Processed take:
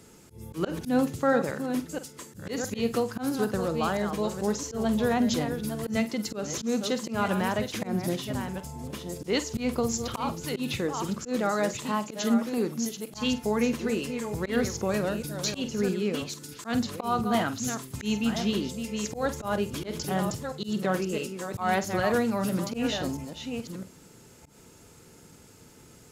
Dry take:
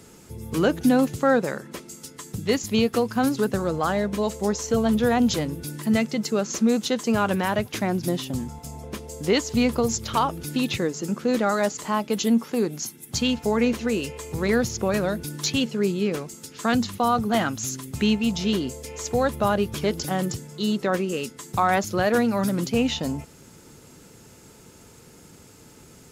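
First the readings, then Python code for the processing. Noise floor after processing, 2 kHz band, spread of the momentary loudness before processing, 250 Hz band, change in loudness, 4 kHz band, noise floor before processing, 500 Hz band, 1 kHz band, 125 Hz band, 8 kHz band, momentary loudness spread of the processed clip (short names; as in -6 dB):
-53 dBFS, -4.5 dB, 10 LU, -5.0 dB, -5.0 dB, -4.5 dB, -49 dBFS, -4.5 dB, -5.0 dB, -4.5 dB, -4.0 dB, 9 LU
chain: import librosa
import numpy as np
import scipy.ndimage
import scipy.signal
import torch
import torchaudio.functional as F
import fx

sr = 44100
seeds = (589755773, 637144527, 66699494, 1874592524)

y = fx.reverse_delay(x, sr, ms=662, wet_db=-8.0)
y = fx.room_flutter(y, sr, wall_m=8.2, rt60_s=0.22)
y = fx.auto_swell(y, sr, attack_ms=118.0)
y = y * 10.0 ** (-4.5 / 20.0)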